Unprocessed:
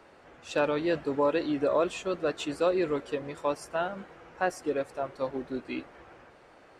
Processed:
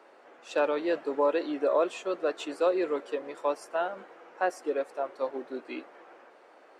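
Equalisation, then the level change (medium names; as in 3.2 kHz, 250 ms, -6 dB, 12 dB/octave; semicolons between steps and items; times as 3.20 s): Bessel high-pass 440 Hz, order 4; tilt shelf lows +4 dB, about 1.3 kHz; 0.0 dB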